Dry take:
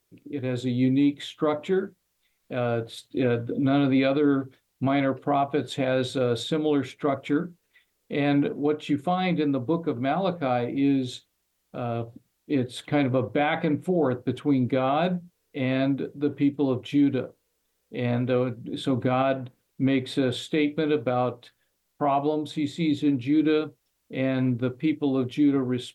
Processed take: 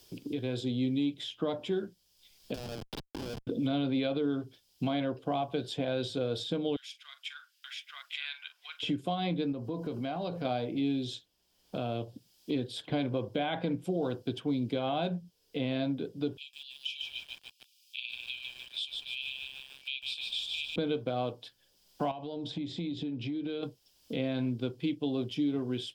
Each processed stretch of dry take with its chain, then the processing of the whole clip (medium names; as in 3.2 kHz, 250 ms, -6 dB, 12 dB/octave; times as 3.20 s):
2.54–3.47 s: bass shelf 270 Hz -9 dB + compression 8:1, threshold -33 dBFS + Schmitt trigger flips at -35 dBFS
6.76–8.83 s: Bessel high-pass 2.6 kHz, order 6 + multi-tap echo 43/880 ms -15/-5.5 dB
9.52–10.45 s: compression 2.5:1, threshold -31 dBFS + band-stop 3.5 kHz, Q 6.9 + transient shaper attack 0 dB, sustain +4 dB
16.37–20.76 s: brick-wall FIR high-pass 2.3 kHz + bit-crushed delay 149 ms, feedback 55%, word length 9-bit, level -3 dB
22.11–23.63 s: compression, threshold -31 dBFS + distance through air 85 m
whole clip: graphic EQ with 31 bands 1.25 kHz -8 dB, 2 kHz -8 dB, 3.15 kHz +8 dB, 5 kHz +12 dB; three bands compressed up and down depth 70%; trim -7.5 dB